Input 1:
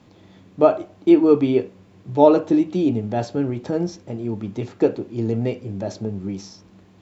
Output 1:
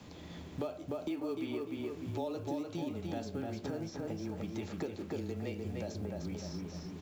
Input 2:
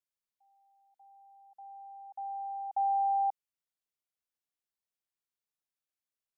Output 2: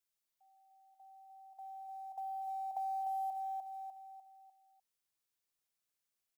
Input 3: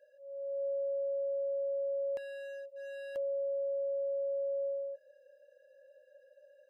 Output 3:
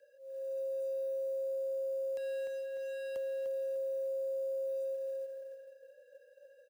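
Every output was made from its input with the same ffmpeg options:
-filter_complex "[0:a]acompressor=threshold=-35dB:ratio=2,highshelf=f=3.3k:g=6,asplit=2[a][b];[b]adelay=299,lowpass=f=3.3k:p=1,volume=-4dB,asplit=2[c][d];[d]adelay=299,lowpass=f=3.3k:p=1,volume=0.4,asplit=2[e][f];[f]adelay=299,lowpass=f=3.3k:p=1,volume=0.4,asplit=2[g][h];[h]adelay=299,lowpass=f=3.3k:p=1,volume=0.4,asplit=2[i][j];[j]adelay=299,lowpass=f=3.3k:p=1,volume=0.4[k];[c][e][g][i][k]amix=inputs=5:normalize=0[l];[a][l]amix=inputs=2:normalize=0,acrossover=split=700|3000[m][n][o];[m]acompressor=threshold=-38dB:ratio=4[p];[n]acompressor=threshold=-47dB:ratio=4[q];[o]acompressor=threshold=-55dB:ratio=4[r];[p][q][r]amix=inputs=3:normalize=0,afreqshift=-18,acrusher=bits=8:mode=log:mix=0:aa=0.000001"

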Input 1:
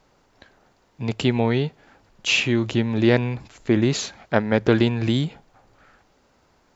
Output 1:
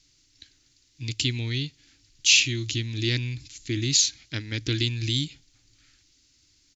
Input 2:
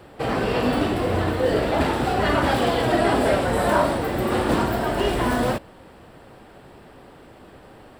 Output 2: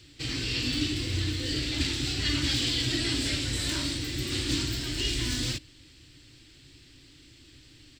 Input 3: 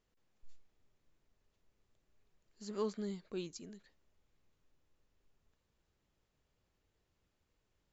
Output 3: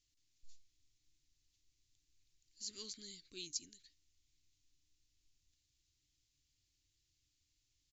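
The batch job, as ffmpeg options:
-af "firequalizer=gain_entry='entry(130,0);entry(200,-18);entry(290,0);entry(420,-18);entry(700,-27);entry(2100,0);entry(4200,12);entry(6800,14);entry(9700,-3)':delay=0.05:min_phase=1,volume=-3.5dB"

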